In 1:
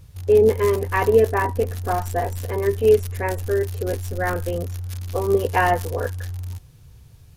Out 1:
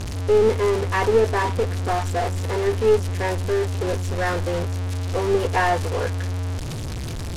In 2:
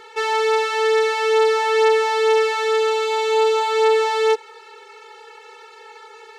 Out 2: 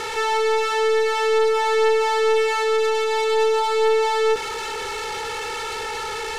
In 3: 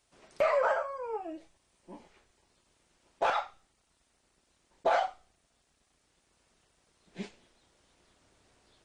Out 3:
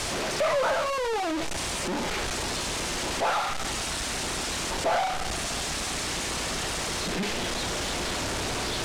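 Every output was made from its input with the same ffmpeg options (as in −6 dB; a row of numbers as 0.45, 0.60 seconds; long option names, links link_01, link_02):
-af "aeval=exprs='val(0)+0.5*0.112*sgn(val(0))':channel_layout=same,aeval=exprs='0.631*(cos(1*acos(clip(val(0)/0.631,-1,1)))-cos(1*PI/2))+0.0501*(cos(4*acos(clip(val(0)/0.631,-1,1)))-cos(4*PI/2))':channel_layout=same,lowpass=8000,volume=-4dB"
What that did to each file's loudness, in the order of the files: −1.0, −2.5, +3.5 LU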